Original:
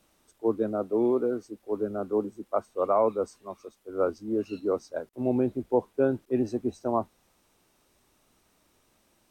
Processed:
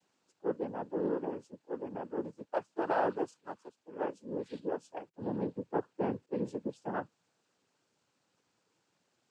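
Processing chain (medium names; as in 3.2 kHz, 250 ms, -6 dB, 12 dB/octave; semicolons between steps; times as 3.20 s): 2.24–3.77 s: waveshaping leveller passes 1; noise-vocoded speech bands 8; trim -8.5 dB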